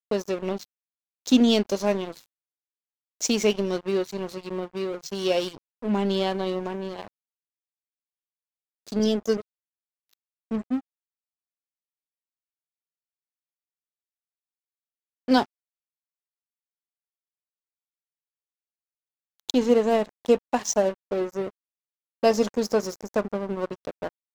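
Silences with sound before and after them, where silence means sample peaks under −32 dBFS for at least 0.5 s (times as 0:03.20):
0:00.63–0:01.26
0:02.19–0:03.21
0:07.07–0:08.88
0:09.41–0:10.51
0:10.79–0:15.28
0:15.44–0:19.50
0:21.49–0:22.23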